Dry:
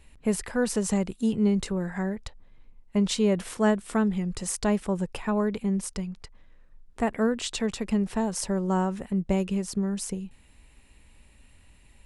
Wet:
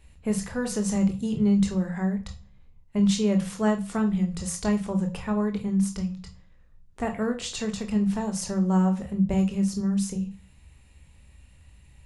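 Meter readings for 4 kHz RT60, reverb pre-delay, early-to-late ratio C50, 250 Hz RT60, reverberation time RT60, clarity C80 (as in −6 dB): 0.35 s, 19 ms, 13.0 dB, 0.60 s, 0.40 s, 18.0 dB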